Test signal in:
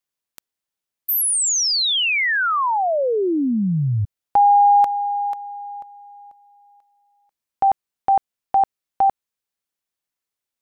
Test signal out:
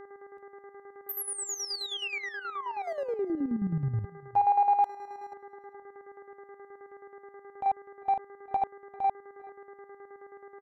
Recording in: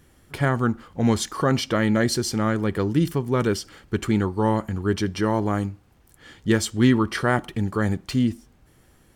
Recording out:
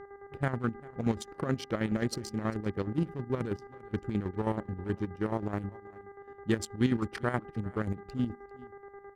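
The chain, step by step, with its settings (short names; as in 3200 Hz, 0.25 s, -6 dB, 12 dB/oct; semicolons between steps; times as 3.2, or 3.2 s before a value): Wiener smoothing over 41 samples; buzz 400 Hz, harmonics 5, -39 dBFS -7 dB/oct; chopper 9.4 Hz, depth 60%, duty 50%; on a send: echo 0.396 s -22 dB; on the sum: gain -7.5 dB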